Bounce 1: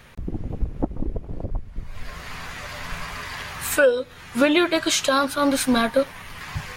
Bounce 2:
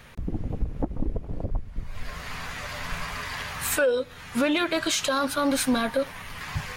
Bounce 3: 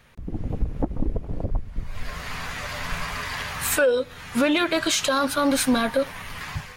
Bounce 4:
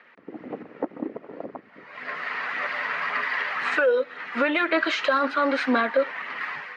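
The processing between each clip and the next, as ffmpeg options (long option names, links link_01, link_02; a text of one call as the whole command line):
ffmpeg -i in.wav -af "bandreject=frequency=360:width=12,acontrast=70,alimiter=limit=-9dB:level=0:latency=1:release=69,volume=-7dB" out.wav
ffmpeg -i in.wav -af "dynaudnorm=framelen=130:gausssize=5:maxgain=10dB,volume=-7dB" out.wav
ffmpeg -i in.wav -af "highpass=frequency=270:width=0.5412,highpass=frequency=270:width=1.3066,equalizer=frequency=1300:width_type=q:width=4:gain=5,equalizer=frequency=1900:width_type=q:width=4:gain=8,equalizer=frequency=3500:width_type=q:width=4:gain=-6,lowpass=frequency=3700:width=0.5412,lowpass=frequency=3700:width=1.3066,alimiter=limit=-12.5dB:level=0:latency=1:release=308,aphaser=in_gain=1:out_gain=1:delay=2.2:decay=0.28:speed=1.9:type=sinusoidal" out.wav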